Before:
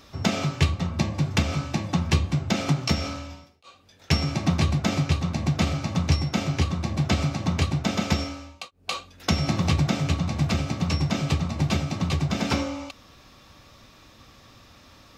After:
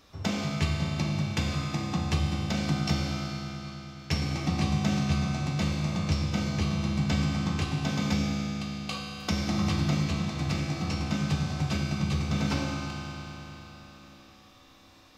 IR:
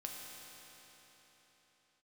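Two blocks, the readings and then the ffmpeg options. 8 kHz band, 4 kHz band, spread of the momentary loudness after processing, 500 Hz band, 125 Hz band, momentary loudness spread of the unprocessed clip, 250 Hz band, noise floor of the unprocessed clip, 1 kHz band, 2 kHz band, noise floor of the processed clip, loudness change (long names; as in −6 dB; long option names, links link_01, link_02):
−4.5 dB, −4.0 dB, 9 LU, −5.5 dB, −4.0 dB, 8 LU, −2.5 dB, −53 dBFS, −4.0 dB, −3.5 dB, −55 dBFS, −4.0 dB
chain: -filter_complex "[0:a]bandreject=frequency=259.6:width_type=h:width=4,bandreject=frequency=519.2:width_type=h:width=4,bandreject=frequency=778.8:width_type=h:width=4,bandreject=frequency=1038.4:width_type=h:width=4,bandreject=frequency=1298:width_type=h:width=4,bandreject=frequency=1557.6:width_type=h:width=4,bandreject=frequency=1817.2:width_type=h:width=4,bandreject=frequency=2076.8:width_type=h:width=4,bandreject=frequency=2336.4:width_type=h:width=4,bandreject=frequency=2596:width_type=h:width=4,bandreject=frequency=2855.6:width_type=h:width=4,bandreject=frequency=3115.2:width_type=h:width=4,bandreject=frequency=3374.8:width_type=h:width=4,bandreject=frequency=3634.4:width_type=h:width=4,bandreject=frequency=3894:width_type=h:width=4[link_01];[1:a]atrim=start_sample=2205[link_02];[link_01][link_02]afir=irnorm=-1:irlink=0,volume=-2.5dB"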